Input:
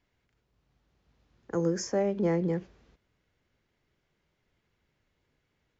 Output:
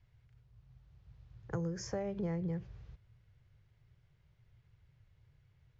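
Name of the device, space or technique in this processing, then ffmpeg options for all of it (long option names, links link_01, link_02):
jukebox: -af "lowpass=6200,lowshelf=frequency=170:width_type=q:width=3:gain=12,acompressor=threshold=-32dB:ratio=5,volume=-2dB"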